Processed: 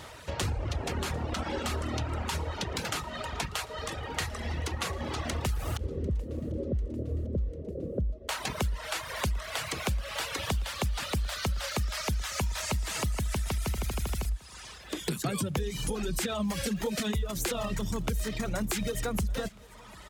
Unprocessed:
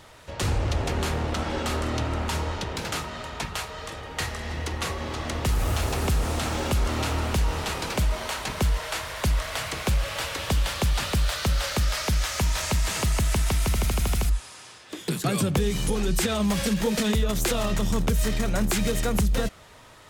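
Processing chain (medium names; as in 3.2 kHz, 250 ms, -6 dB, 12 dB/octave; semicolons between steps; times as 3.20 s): 5.77–8.29 s: steep low-pass 570 Hz 72 dB/octave; reverb removal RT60 1.2 s; high-pass 41 Hz; peaking EQ 64 Hz +3.5 dB 0.78 oct; compression 3:1, threshold -36 dBFS, peak gain reduction 13.5 dB; feedback delay 746 ms, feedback 60%, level -24 dB; trim +4.5 dB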